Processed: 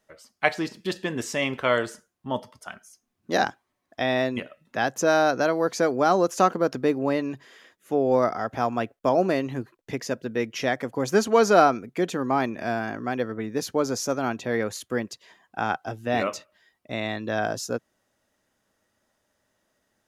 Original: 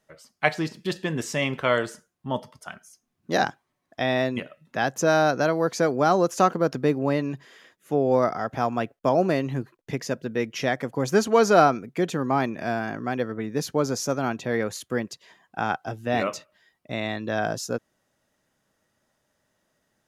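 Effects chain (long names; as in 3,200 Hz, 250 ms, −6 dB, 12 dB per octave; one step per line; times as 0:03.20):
parametric band 150 Hz −9.5 dB 0.32 octaves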